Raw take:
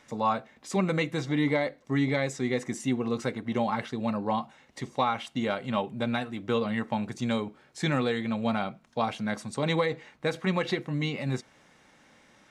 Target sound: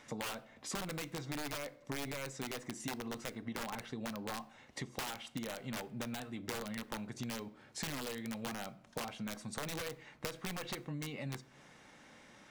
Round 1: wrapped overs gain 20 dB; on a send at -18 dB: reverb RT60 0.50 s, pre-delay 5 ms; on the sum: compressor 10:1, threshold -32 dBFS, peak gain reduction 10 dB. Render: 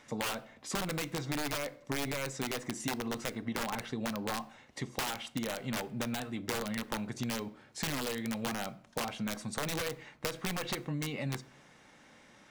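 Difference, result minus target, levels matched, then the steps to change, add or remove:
compressor: peak gain reduction -6 dB
change: compressor 10:1, threshold -38.5 dBFS, peak gain reduction 16 dB

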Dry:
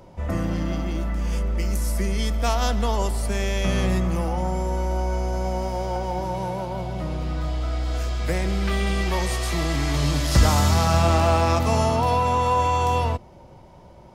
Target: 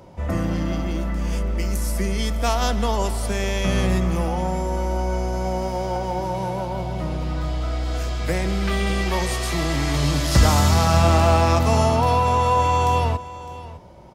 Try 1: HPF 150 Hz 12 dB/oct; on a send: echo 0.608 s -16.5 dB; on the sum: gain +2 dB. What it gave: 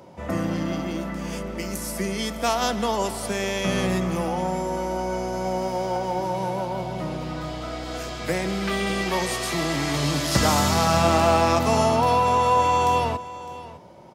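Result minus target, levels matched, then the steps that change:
125 Hz band -5.5 dB
change: HPF 40 Hz 12 dB/oct

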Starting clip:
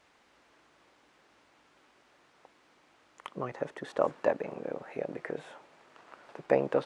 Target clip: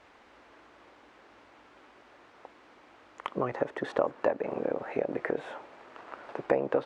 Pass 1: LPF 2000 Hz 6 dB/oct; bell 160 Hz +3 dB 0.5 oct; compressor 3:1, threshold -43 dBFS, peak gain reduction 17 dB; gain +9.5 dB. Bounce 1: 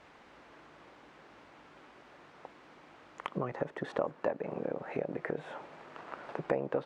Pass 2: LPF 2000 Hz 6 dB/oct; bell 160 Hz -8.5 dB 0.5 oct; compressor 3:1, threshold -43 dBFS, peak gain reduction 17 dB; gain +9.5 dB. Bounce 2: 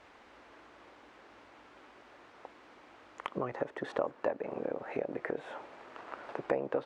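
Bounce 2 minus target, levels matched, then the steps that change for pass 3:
compressor: peak gain reduction +5.5 dB
change: compressor 3:1, threshold -35 dBFS, peak gain reduction 11.5 dB

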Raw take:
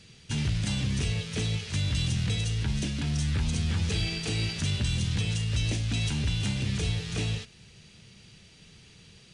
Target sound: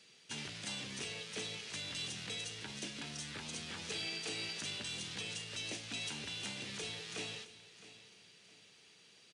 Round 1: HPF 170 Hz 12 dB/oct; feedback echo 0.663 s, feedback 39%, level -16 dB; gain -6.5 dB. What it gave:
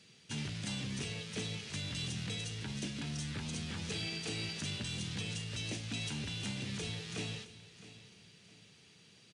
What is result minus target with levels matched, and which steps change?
125 Hz band +10.0 dB
change: HPF 370 Hz 12 dB/oct

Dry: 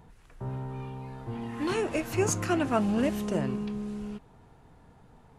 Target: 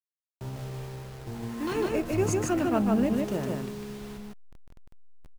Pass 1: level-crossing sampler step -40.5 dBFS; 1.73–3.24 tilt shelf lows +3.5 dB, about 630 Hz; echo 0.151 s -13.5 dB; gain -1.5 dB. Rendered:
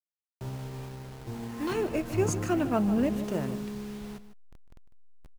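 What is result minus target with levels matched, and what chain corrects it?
echo-to-direct -11 dB
level-crossing sampler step -40.5 dBFS; 1.73–3.24 tilt shelf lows +3.5 dB, about 630 Hz; echo 0.151 s -2.5 dB; gain -1.5 dB

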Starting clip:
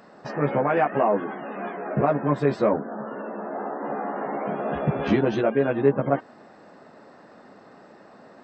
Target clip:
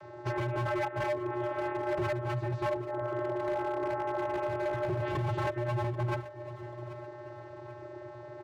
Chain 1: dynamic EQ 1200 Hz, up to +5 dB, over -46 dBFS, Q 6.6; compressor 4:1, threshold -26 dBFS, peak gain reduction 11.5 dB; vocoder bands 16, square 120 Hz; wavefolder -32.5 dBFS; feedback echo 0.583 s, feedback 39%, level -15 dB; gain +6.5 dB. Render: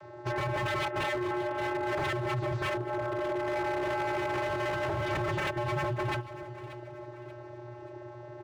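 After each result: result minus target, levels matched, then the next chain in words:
echo 0.202 s early; compressor: peak gain reduction -5 dB
dynamic EQ 1200 Hz, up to +5 dB, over -46 dBFS, Q 6.6; compressor 4:1, threshold -26 dBFS, peak gain reduction 11.5 dB; vocoder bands 16, square 120 Hz; wavefolder -32.5 dBFS; feedback echo 0.785 s, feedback 39%, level -15 dB; gain +6.5 dB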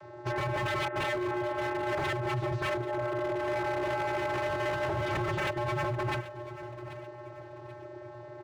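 compressor: peak gain reduction -5 dB
dynamic EQ 1200 Hz, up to +5 dB, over -46 dBFS, Q 6.6; compressor 4:1, threshold -32.5 dBFS, peak gain reduction 16 dB; vocoder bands 16, square 120 Hz; wavefolder -32.5 dBFS; feedback echo 0.785 s, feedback 39%, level -15 dB; gain +6.5 dB

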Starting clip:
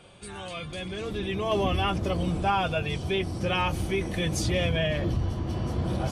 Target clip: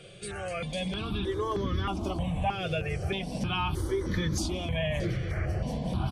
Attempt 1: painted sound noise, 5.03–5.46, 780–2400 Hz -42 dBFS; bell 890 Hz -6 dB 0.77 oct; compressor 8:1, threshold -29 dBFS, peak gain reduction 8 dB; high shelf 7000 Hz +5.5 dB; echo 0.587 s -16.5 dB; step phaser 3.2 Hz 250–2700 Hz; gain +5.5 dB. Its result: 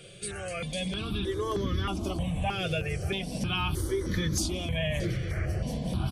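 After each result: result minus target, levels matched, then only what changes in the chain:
8000 Hz band +4.5 dB; 1000 Hz band -3.0 dB
change: high shelf 7000 Hz -4 dB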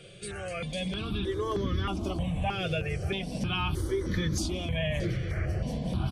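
1000 Hz band -2.5 dB
remove: bell 890 Hz -6 dB 0.77 oct

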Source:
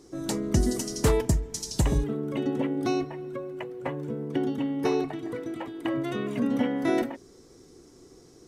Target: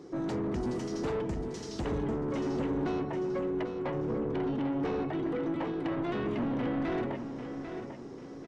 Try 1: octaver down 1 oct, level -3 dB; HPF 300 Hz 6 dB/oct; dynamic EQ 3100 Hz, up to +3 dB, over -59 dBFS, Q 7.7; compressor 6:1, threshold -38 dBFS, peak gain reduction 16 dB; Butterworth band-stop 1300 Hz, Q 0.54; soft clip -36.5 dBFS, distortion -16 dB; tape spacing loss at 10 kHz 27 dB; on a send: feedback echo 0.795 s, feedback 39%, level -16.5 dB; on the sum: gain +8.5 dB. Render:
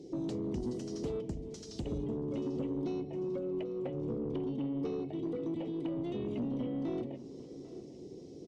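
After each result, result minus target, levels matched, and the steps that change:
1000 Hz band -9.0 dB; compressor: peak gain reduction +8 dB; echo-to-direct -8 dB
remove: Butterworth band-stop 1300 Hz, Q 0.54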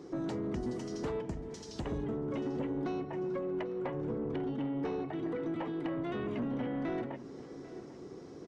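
compressor: peak gain reduction +8 dB; echo-to-direct -8 dB
change: compressor 6:1, threshold -28.5 dBFS, peak gain reduction 8 dB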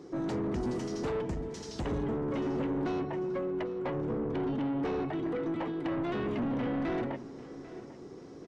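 echo-to-direct -8 dB
change: feedback echo 0.795 s, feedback 39%, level -8.5 dB

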